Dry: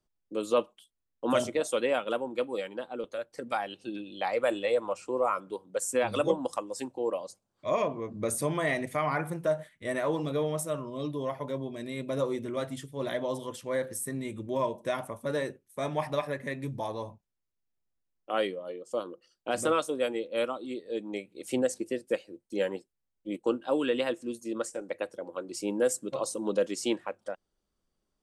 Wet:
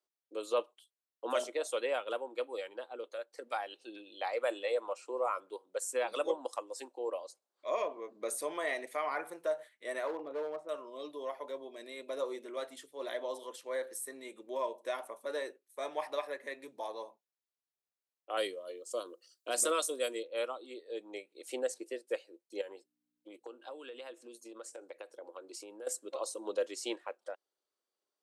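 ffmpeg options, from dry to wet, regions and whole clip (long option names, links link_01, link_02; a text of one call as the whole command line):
ffmpeg -i in.wav -filter_complex "[0:a]asettb=1/sr,asplit=3[link_01][link_02][link_03];[link_01]atrim=end=10.074[link_04];[link_02]atrim=start=10.07:end=10.69,asetpts=PTS-STARTPTS,afade=type=in:duration=0.004:curve=qsin,afade=type=out:start_time=0.616:duration=0.004:curve=qsin,lowpass=1300,asoftclip=type=hard:threshold=-26dB[link_05];[link_03]atrim=start=10.686[link_06];[link_04][link_05]acrossfade=duration=0.004:curve1=hsin:curve2=qsin[link_07];[link_07][link_06]acrossfade=duration=0.004:curve1=qsin:curve2=hsin,asettb=1/sr,asplit=3[link_08][link_09][link_10];[link_08]atrim=end=18.374[link_11];[link_09]atrim=start=18.37:end=20.23,asetpts=PTS-STARTPTS,afade=type=in:duration=0.004:curve=qsin,afade=type=out:start_time=1.856:duration=0.004:curve=qsin,asuperstop=centerf=840:order=8:qfactor=5.5,bass=frequency=250:gain=9,treble=frequency=4000:gain=14[link_12];[link_10]atrim=start=20.226[link_13];[link_11][link_12]acrossfade=duration=0.004:curve1=hsin:curve2=qsin[link_14];[link_14][link_13]acrossfade=duration=0.004:curve1=qsin:curve2=hsin,asettb=1/sr,asplit=3[link_15][link_16][link_17];[link_15]atrim=end=22.614[link_18];[link_16]atrim=start=22.61:end=25.87,asetpts=PTS-STARTPTS,afade=type=in:duration=0.004:curve=qsin,afade=type=out:start_time=3.256:duration=0.004:curve=qsin,aeval=exprs='val(0)+0.00112*(sin(2*PI*60*n/s)+sin(2*PI*2*60*n/s)/2+sin(2*PI*3*60*n/s)/3+sin(2*PI*4*60*n/s)/4+sin(2*PI*5*60*n/s)/5)':channel_layout=same,bandreject=frequency=1900:width=17,acompressor=threshold=-35dB:ratio=12:attack=3.2:release=140:knee=1:detection=peak[link_19];[link_17]atrim=start=25.866[link_20];[link_18][link_19]acrossfade=duration=0.004:curve1=hsin:curve2=qsin[link_21];[link_21][link_20]acrossfade=duration=0.004:curve1=qsin:curve2=hsin,highpass=frequency=370:width=0.5412,highpass=frequency=370:width=1.3066,equalizer=frequency=4100:width=7.2:gain=4.5,volume=-5.5dB" out.wav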